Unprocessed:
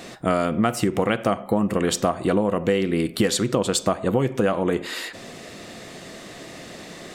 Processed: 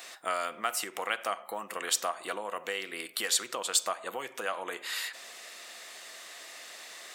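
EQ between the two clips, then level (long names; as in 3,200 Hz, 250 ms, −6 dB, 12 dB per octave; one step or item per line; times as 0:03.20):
high-pass filter 1,000 Hz 12 dB per octave
high-shelf EQ 11,000 Hz +10 dB
−4.0 dB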